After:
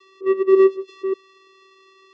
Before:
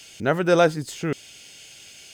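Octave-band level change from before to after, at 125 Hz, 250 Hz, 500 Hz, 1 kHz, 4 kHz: below −30 dB, +2.5 dB, +5.0 dB, −5.5 dB, below −10 dB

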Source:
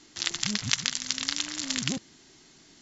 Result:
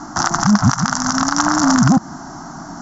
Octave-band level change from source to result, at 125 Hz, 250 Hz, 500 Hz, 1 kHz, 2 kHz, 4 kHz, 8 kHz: +21.5 dB, +22.0 dB, +19.0 dB, +27.5 dB, +11.5 dB, +2.5 dB, can't be measured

